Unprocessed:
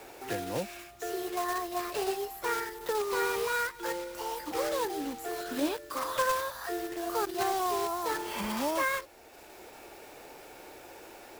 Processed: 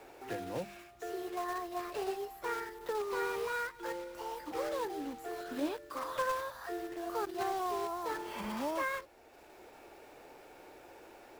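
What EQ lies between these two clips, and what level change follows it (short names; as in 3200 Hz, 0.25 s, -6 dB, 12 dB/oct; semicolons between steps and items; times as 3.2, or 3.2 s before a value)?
high shelf 3400 Hz -8 dB; notches 50/100/150/200 Hz; -4.5 dB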